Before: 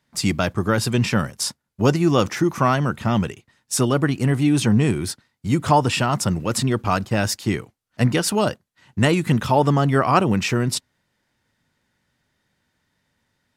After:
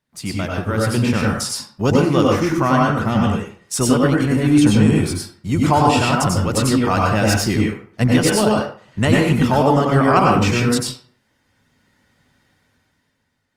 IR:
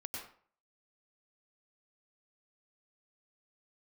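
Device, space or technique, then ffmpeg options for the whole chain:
speakerphone in a meeting room: -filter_complex "[1:a]atrim=start_sample=2205[a];[0:a][a]afir=irnorm=-1:irlink=0,dynaudnorm=f=200:g=9:m=12dB,volume=-1dB" -ar 48000 -c:a libopus -b:a 32k

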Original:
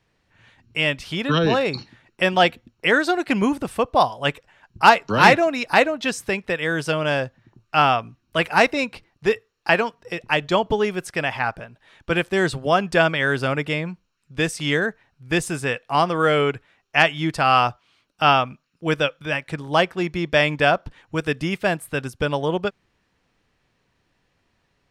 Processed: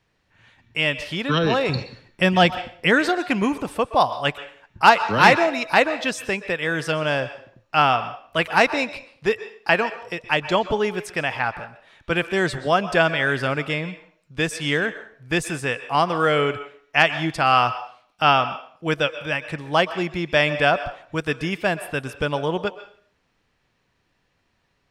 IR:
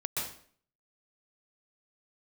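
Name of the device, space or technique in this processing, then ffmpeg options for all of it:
filtered reverb send: -filter_complex "[0:a]asplit=2[a][b];[b]highpass=500,lowpass=7.5k[c];[1:a]atrim=start_sample=2205[d];[c][d]afir=irnorm=-1:irlink=0,volume=-14.5dB[e];[a][e]amix=inputs=2:normalize=0,asettb=1/sr,asplit=3[f][g][h];[f]atrim=end=1.694[i];[g]atrim=start=1.69:end=3.09,asetpts=PTS-STARTPTS,afade=t=in:d=0.004:c=qsin,afade=t=out:st=1.396:d=0.004:c=qsin,bass=f=250:g=11,treble=f=4k:g=2[j];[h]atrim=start=3.086[k];[i][j]acrossfade=d=0.004:c1=hsin:c2=qsin[l];[l][k]acrossfade=d=0.004:c1=qsin:c2=hsin,volume=-1.5dB"

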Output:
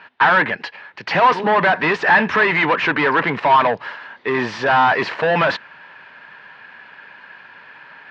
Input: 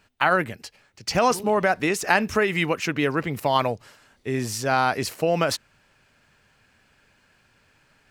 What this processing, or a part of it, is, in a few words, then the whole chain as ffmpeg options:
overdrive pedal into a guitar cabinet: -filter_complex "[0:a]asplit=2[a][b];[b]highpass=f=720:p=1,volume=30dB,asoftclip=type=tanh:threshold=-4dB[c];[a][c]amix=inputs=2:normalize=0,lowpass=f=3.2k:p=1,volume=-6dB,highpass=110,equalizer=f=170:t=q:w=4:g=4,equalizer=f=960:t=q:w=4:g=9,equalizer=f=1.7k:t=q:w=4:g=8,lowpass=f=3.8k:w=0.5412,lowpass=f=3.8k:w=1.3066,volume=-6dB"

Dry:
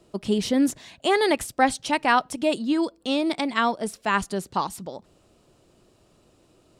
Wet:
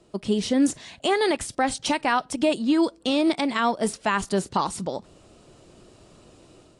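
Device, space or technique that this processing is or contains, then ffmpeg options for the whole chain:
low-bitrate web radio: -af "dynaudnorm=f=550:g=3:m=8.5dB,alimiter=limit=-12dB:level=0:latency=1:release=235" -ar 22050 -c:a aac -b:a 48k

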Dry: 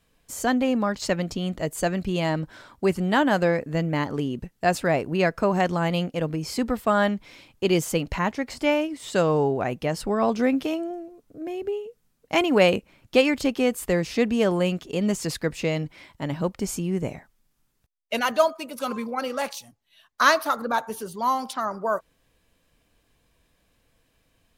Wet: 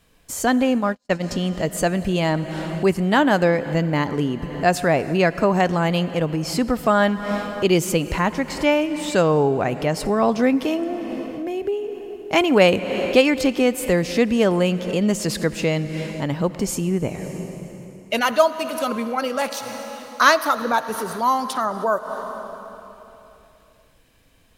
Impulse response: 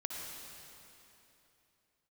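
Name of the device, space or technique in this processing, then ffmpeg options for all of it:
ducked reverb: -filter_complex "[0:a]asplit=3[a][b][c];[1:a]atrim=start_sample=2205[d];[b][d]afir=irnorm=-1:irlink=0[e];[c]apad=whole_len=1083572[f];[e][f]sidechaincompress=threshold=-40dB:ratio=3:attack=22:release=155,volume=-1dB[g];[a][g]amix=inputs=2:normalize=0,asplit=3[h][i][j];[h]afade=t=out:st=0.63:d=0.02[k];[i]agate=range=-47dB:threshold=-22dB:ratio=16:detection=peak,afade=t=in:st=0.63:d=0.02,afade=t=out:st=1.22:d=0.02[l];[j]afade=t=in:st=1.22:d=0.02[m];[k][l][m]amix=inputs=3:normalize=0,volume=3dB"

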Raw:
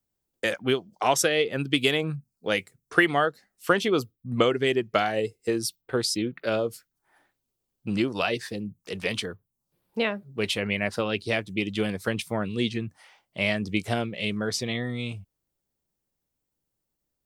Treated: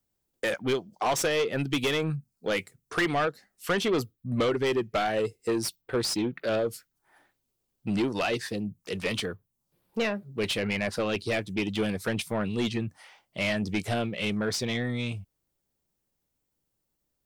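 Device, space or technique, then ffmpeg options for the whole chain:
saturation between pre-emphasis and de-emphasis: -af "highshelf=f=4.6k:g=8,asoftclip=type=tanh:threshold=-22.5dB,highshelf=f=4.6k:g=-8,volume=2dB"

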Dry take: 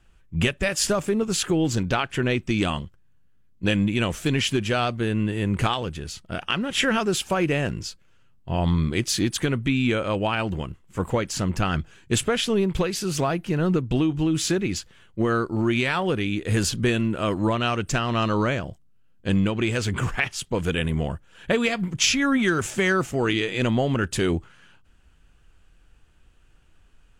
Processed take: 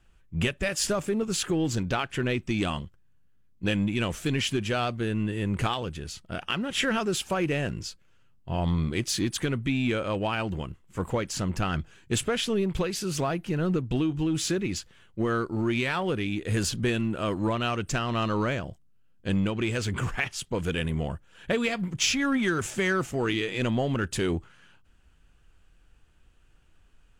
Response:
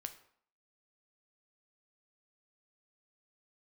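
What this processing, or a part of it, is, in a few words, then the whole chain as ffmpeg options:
parallel distortion: -filter_complex "[0:a]asplit=2[a][b];[b]asoftclip=type=hard:threshold=-24.5dB,volume=-10.5dB[c];[a][c]amix=inputs=2:normalize=0,volume=-5.5dB"

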